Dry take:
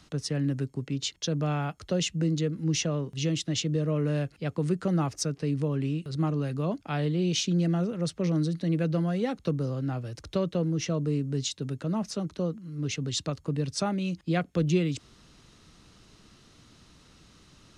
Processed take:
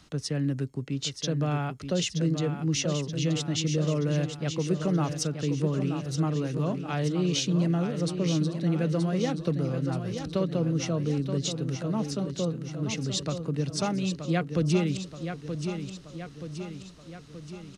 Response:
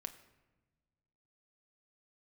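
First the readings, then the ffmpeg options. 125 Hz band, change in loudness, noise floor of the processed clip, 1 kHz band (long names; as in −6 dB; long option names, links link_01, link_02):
+1.0 dB, +0.5 dB, −47 dBFS, +1.0 dB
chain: -af "aecho=1:1:927|1854|2781|3708|4635|5562|6489:0.398|0.223|0.125|0.0699|0.0392|0.0219|0.0123"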